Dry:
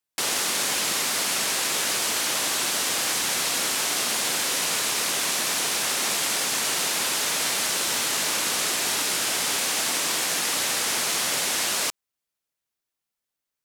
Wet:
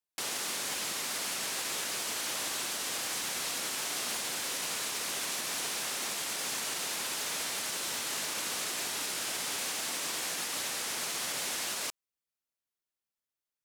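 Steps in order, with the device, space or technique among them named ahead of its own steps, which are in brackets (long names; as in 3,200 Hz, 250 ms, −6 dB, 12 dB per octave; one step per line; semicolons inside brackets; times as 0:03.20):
limiter into clipper (brickwall limiter −16.5 dBFS, peak gain reduction 4 dB; hard clipping −21 dBFS, distortion −19 dB)
level −8 dB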